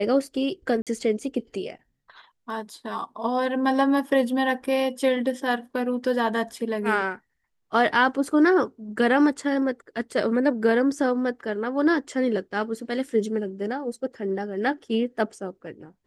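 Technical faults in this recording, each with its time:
0.82–0.87 s: dropout 47 ms

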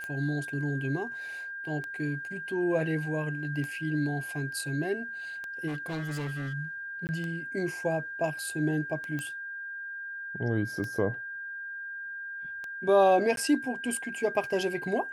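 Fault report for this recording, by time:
tick 33 1/3 rpm -24 dBFS
whine 1.6 kHz -36 dBFS
5.67–6.54 s: clipped -31 dBFS
7.07–7.09 s: dropout 19 ms
9.19 s: pop -22 dBFS
13.36–13.37 s: dropout 12 ms

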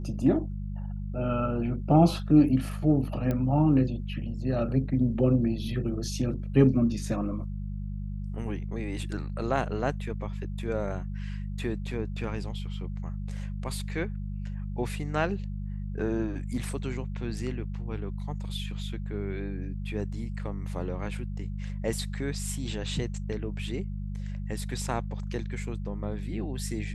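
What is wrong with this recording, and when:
hum 50 Hz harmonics 4 -34 dBFS
3.31 s: pop -18 dBFS

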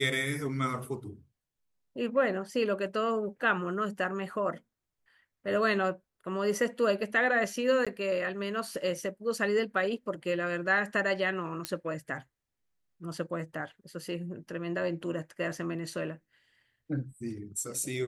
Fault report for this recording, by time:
7.85–7.87 s: dropout 16 ms
11.65 s: pop -14 dBFS

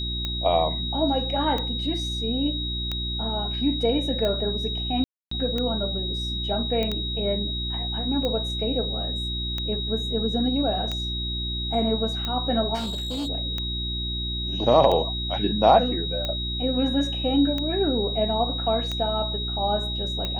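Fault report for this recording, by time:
hum 60 Hz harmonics 6 -31 dBFS
tick 45 rpm -15 dBFS
whine 3.8 kHz -29 dBFS
5.04–5.31 s: dropout 274 ms
6.83 s: pop -15 dBFS
12.74–13.29 s: clipped -26 dBFS

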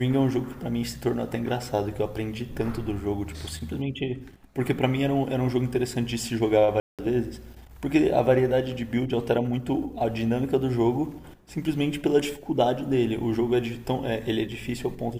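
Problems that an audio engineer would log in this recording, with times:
6.80–6.99 s: dropout 187 ms

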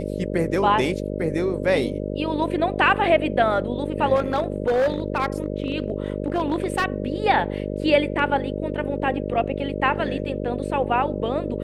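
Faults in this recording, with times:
buzz 50 Hz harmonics 12 -28 dBFS
4.15–6.85 s: clipped -16.5 dBFS

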